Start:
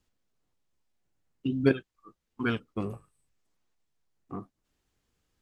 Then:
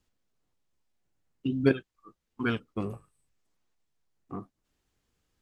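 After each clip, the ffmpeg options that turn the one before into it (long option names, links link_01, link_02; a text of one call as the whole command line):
ffmpeg -i in.wav -af anull out.wav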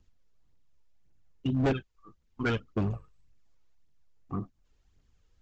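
ffmpeg -i in.wav -af "lowshelf=frequency=120:gain=10.5,aphaser=in_gain=1:out_gain=1:delay=2.4:decay=0.45:speed=1.8:type=triangular,aresample=16000,volume=22.5dB,asoftclip=hard,volume=-22.5dB,aresample=44100" out.wav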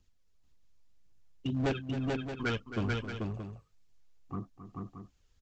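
ffmpeg -i in.wav -filter_complex "[0:a]equalizer=frequency=6300:width=0.35:gain=6,asplit=2[link_01][link_02];[link_02]aecho=0:1:268|437|625:0.266|0.708|0.335[link_03];[link_01][link_03]amix=inputs=2:normalize=0,volume=-4.5dB" out.wav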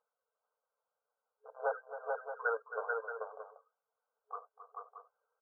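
ffmpeg -i in.wav -af "afftfilt=real='re*between(b*sr/4096,420,1600)':imag='im*between(b*sr/4096,420,1600)':win_size=4096:overlap=0.75,volume=3dB" out.wav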